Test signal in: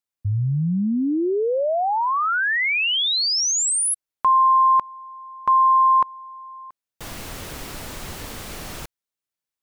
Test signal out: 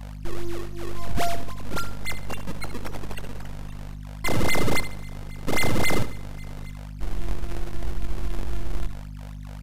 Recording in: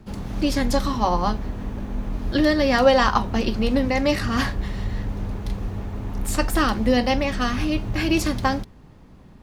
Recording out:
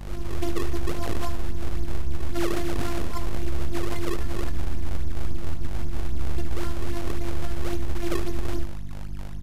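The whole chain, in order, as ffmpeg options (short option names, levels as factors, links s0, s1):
-filter_complex "[0:a]asubboost=boost=3.5:cutoff=74,aecho=1:1:2.9:0.93,acrossover=split=4400[s0][s1];[s1]acompressor=threshold=0.02:ratio=4:attack=1:release=60[s2];[s0][s2]amix=inputs=2:normalize=0,lowshelf=f=480:g=11.5,acompressor=threshold=0.631:ratio=6:release=340,alimiter=limit=0.562:level=0:latency=1,aeval=exprs='abs(val(0))':c=same,afftfilt=real='hypot(re,im)*cos(PI*b)':imag='0':win_size=512:overlap=0.75,aeval=exprs='val(0)+0.0501*(sin(2*PI*50*n/s)+sin(2*PI*2*50*n/s)/2+sin(2*PI*3*50*n/s)/3+sin(2*PI*4*50*n/s)/4+sin(2*PI*5*50*n/s)/5)':c=same,acrusher=samples=34:mix=1:aa=0.000001:lfo=1:lforange=54.4:lforate=3.7,asplit=2[s3][s4];[s4]aecho=0:1:73|146|219|292:0.251|0.0929|0.0344|0.0127[s5];[s3][s5]amix=inputs=2:normalize=0,aresample=32000,aresample=44100,volume=0.376"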